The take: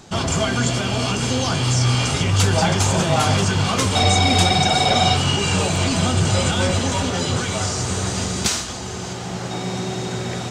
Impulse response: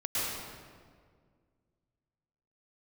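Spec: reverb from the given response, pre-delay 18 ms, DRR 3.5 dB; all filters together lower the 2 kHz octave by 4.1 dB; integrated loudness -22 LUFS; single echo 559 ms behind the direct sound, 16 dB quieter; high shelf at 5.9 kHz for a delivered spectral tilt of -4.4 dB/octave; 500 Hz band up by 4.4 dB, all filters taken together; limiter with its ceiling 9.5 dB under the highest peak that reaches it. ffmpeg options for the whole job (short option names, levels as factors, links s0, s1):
-filter_complex "[0:a]equalizer=f=500:t=o:g=6,equalizer=f=2000:t=o:g=-6.5,highshelf=f=5900:g=3.5,alimiter=limit=0.251:level=0:latency=1,aecho=1:1:559:0.158,asplit=2[s0][s1];[1:a]atrim=start_sample=2205,adelay=18[s2];[s1][s2]afir=irnorm=-1:irlink=0,volume=0.266[s3];[s0][s3]amix=inputs=2:normalize=0,volume=0.75"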